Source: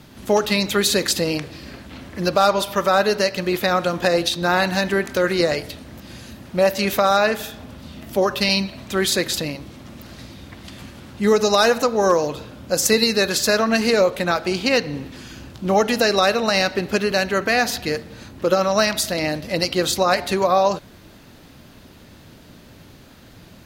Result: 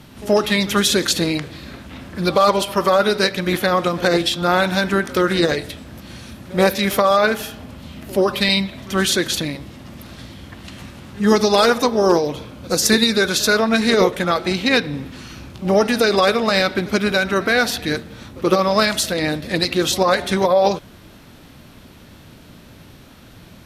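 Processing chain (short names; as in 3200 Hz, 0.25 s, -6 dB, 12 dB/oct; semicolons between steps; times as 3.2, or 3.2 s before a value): pre-echo 78 ms -20.5 dB; formant shift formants -2 st; gain +2 dB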